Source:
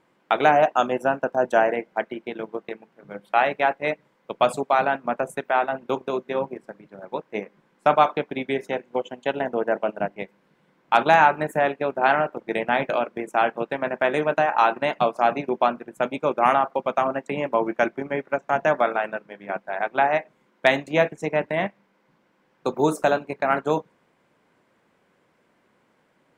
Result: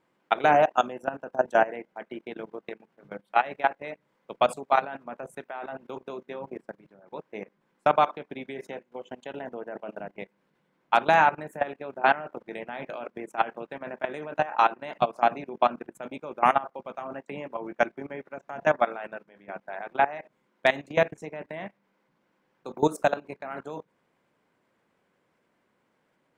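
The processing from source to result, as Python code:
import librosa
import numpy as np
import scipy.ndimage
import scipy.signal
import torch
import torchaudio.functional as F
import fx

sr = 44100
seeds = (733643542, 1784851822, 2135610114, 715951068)

y = fx.level_steps(x, sr, step_db=18)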